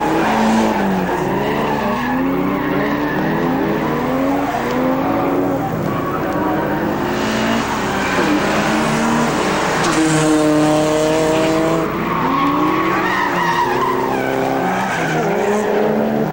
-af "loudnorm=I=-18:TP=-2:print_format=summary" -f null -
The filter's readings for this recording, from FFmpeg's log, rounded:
Input Integrated:    -16.6 LUFS
Input True Peak:      -5.9 dBTP
Input LRA:             2.7 LU
Input Threshold:     -26.6 LUFS